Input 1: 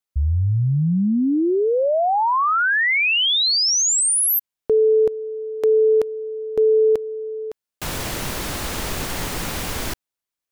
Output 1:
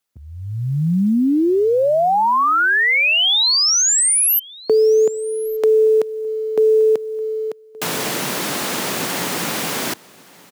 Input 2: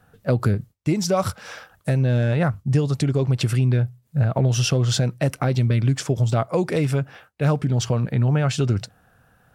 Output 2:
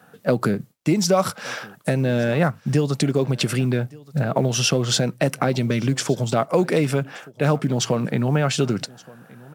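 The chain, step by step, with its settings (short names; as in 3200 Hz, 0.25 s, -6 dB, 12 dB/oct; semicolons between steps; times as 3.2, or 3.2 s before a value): HPF 160 Hz 24 dB/oct; in parallel at +2.5 dB: compressor 5:1, threshold -29 dBFS; on the sum: companded quantiser 8-bit; echo 1.173 s -23 dB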